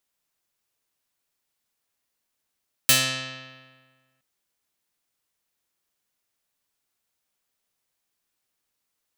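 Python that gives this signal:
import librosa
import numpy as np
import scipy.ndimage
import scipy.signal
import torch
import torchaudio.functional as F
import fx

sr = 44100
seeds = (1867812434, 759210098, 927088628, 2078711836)

y = fx.pluck(sr, length_s=1.32, note=48, decay_s=1.58, pick=0.32, brightness='medium')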